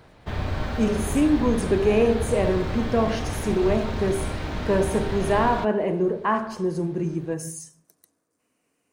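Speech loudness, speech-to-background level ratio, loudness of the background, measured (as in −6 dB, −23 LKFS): −24.0 LKFS, 6.5 dB, −30.5 LKFS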